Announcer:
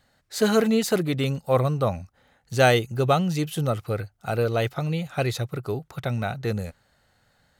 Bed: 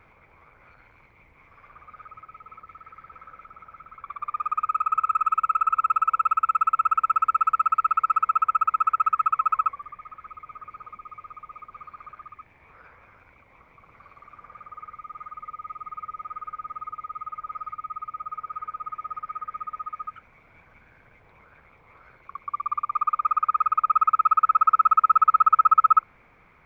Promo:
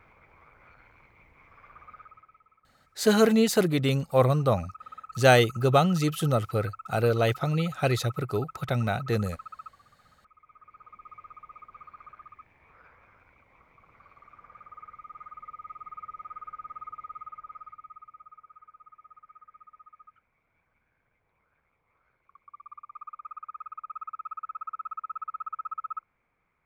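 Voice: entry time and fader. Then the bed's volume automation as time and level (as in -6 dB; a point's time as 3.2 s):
2.65 s, 0.0 dB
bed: 1.92 s -2 dB
2.61 s -21 dB
10.13 s -21 dB
11.09 s -5.5 dB
17.09 s -5.5 dB
18.58 s -19 dB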